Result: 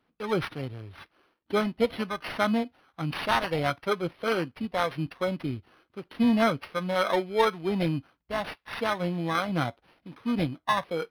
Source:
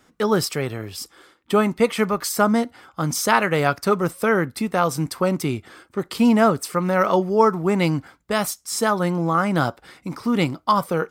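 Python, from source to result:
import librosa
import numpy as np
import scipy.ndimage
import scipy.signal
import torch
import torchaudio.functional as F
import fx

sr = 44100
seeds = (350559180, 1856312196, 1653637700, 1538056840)

y = fx.bit_reversed(x, sr, seeds[0], block=16)
y = fx.noise_reduce_blind(y, sr, reduce_db=8)
y = np.interp(np.arange(len(y)), np.arange(len(y))[::6], y[::6])
y = y * 10.0 ** (-6.0 / 20.0)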